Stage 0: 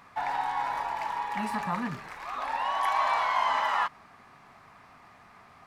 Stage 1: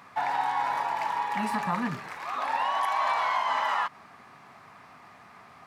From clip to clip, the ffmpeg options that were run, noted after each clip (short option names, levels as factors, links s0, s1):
-af "highpass=100,alimiter=limit=0.0944:level=0:latency=1:release=155,volume=1.41"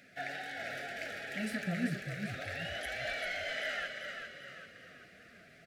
-filter_complex "[0:a]flanger=delay=3.1:depth=4.9:regen=43:speed=1.9:shape=triangular,asuperstop=centerf=1000:order=8:qfactor=1.3,asplit=7[s0][s1][s2][s3][s4][s5][s6];[s1]adelay=393,afreqshift=-39,volume=0.501[s7];[s2]adelay=786,afreqshift=-78,volume=0.232[s8];[s3]adelay=1179,afreqshift=-117,volume=0.106[s9];[s4]adelay=1572,afreqshift=-156,volume=0.049[s10];[s5]adelay=1965,afreqshift=-195,volume=0.0224[s11];[s6]adelay=2358,afreqshift=-234,volume=0.0104[s12];[s0][s7][s8][s9][s10][s11][s12]amix=inputs=7:normalize=0"